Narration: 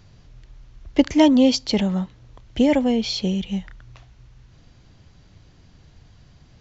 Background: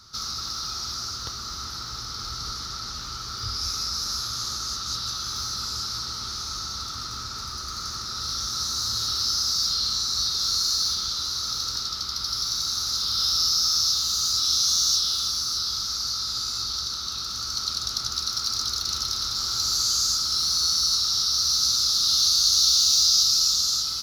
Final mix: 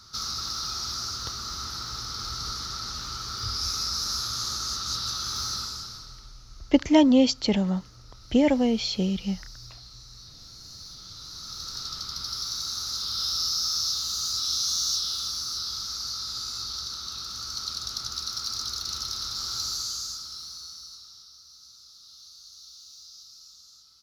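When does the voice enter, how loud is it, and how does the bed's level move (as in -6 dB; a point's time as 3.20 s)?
5.75 s, -3.0 dB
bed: 5.55 s -0.5 dB
6.42 s -23 dB
10.58 s -23 dB
11.89 s -5 dB
19.59 s -5 dB
21.44 s -29 dB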